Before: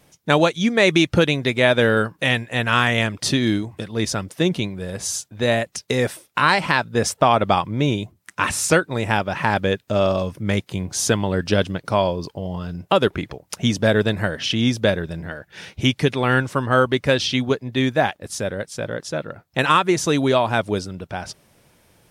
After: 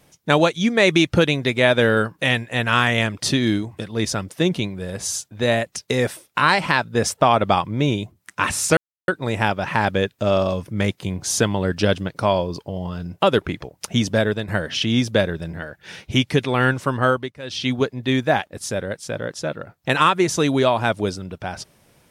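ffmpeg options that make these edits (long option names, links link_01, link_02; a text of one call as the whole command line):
ffmpeg -i in.wav -filter_complex "[0:a]asplit=5[link_01][link_02][link_03][link_04][link_05];[link_01]atrim=end=8.77,asetpts=PTS-STARTPTS,afade=type=out:start_time=8.766:duration=0.004:curve=hsin,apad=pad_dur=0.31[link_06];[link_02]atrim=start=8.77:end=14.17,asetpts=PTS-STARTPTS,afade=type=in:duration=0.004:curve=hsin,afade=type=out:start_time=5:duration=0.4:silence=0.375837[link_07];[link_03]atrim=start=14.17:end=17.02,asetpts=PTS-STARTPTS,afade=type=in:duration=0.004:curve=hsin:silence=0.375837,afade=type=out:start_time=2.55:duration=0.3:silence=0.11885[link_08];[link_04]atrim=start=17.02:end=17.11,asetpts=PTS-STARTPTS,volume=-18.5dB[link_09];[link_05]atrim=start=17.11,asetpts=PTS-STARTPTS,afade=type=in:duration=0.3:silence=0.11885[link_10];[link_06][link_07][link_08][link_09][link_10]concat=n=5:v=0:a=1" out.wav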